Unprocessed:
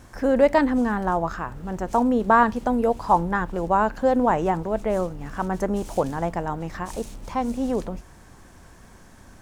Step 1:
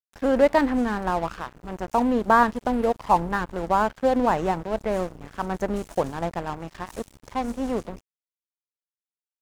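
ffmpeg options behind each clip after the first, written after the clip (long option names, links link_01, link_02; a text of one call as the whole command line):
ffmpeg -i in.wav -af "aeval=exprs='sgn(val(0))*max(abs(val(0))-0.02,0)':channel_layout=same" out.wav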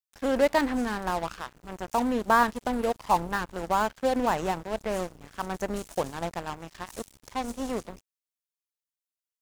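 ffmpeg -i in.wav -filter_complex "[0:a]highshelf=frequency=2600:gain=10,asplit=2[link_01][link_02];[link_02]acrusher=bits=3:mix=0:aa=0.5,volume=-8dB[link_03];[link_01][link_03]amix=inputs=2:normalize=0,volume=-8dB" out.wav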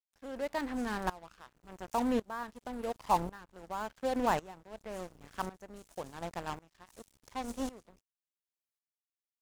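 ffmpeg -i in.wav -af "aeval=exprs='val(0)*pow(10,-21*if(lt(mod(-0.91*n/s,1),2*abs(-0.91)/1000),1-mod(-0.91*n/s,1)/(2*abs(-0.91)/1000),(mod(-0.91*n/s,1)-2*abs(-0.91)/1000)/(1-2*abs(-0.91)/1000))/20)':channel_layout=same,volume=-1.5dB" out.wav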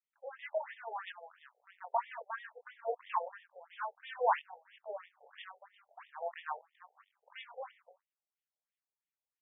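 ffmpeg -i in.wav -filter_complex "[0:a]asplit=2[link_01][link_02];[link_02]adelay=22,volume=-4.5dB[link_03];[link_01][link_03]amix=inputs=2:normalize=0,afftfilt=real='re*between(b*sr/1024,590*pow(2600/590,0.5+0.5*sin(2*PI*3*pts/sr))/1.41,590*pow(2600/590,0.5+0.5*sin(2*PI*3*pts/sr))*1.41)':imag='im*between(b*sr/1024,590*pow(2600/590,0.5+0.5*sin(2*PI*3*pts/sr))/1.41,590*pow(2600/590,0.5+0.5*sin(2*PI*3*pts/sr))*1.41)':win_size=1024:overlap=0.75,volume=2dB" out.wav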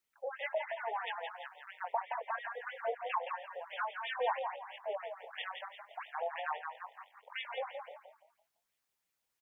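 ffmpeg -i in.wav -filter_complex "[0:a]acompressor=threshold=-47dB:ratio=2.5,asplit=2[link_01][link_02];[link_02]asplit=4[link_03][link_04][link_05][link_06];[link_03]adelay=169,afreqshift=36,volume=-6dB[link_07];[link_04]adelay=338,afreqshift=72,volume=-15.9dB[link_08];[link_05]adelay=507,afreqshift=108,volume=-25.8dB[link_09];[link_06]adelay=676,afreqshift=144,volume=-35.7dB[link_10];[link_07][link_08][link_09][link_10]amix=inputs=4:normalize=0[link_11];[link_01][link_11]amix=inputs=2:normalize=0,volume=9.5dB" out.wav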